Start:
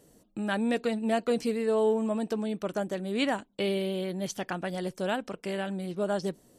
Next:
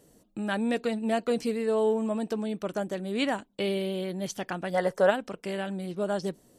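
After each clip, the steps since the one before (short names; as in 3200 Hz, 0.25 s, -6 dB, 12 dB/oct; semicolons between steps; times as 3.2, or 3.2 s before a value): spectral gain 4.74–5.1, 400–2100 Hz +12 dB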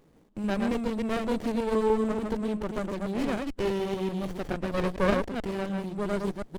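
reverse delay 0.146 s, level -3.5 dB; running maximum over 33 samples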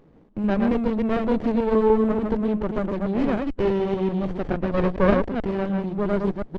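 tape spacing loss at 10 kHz 28 dB; gain +7.5 dB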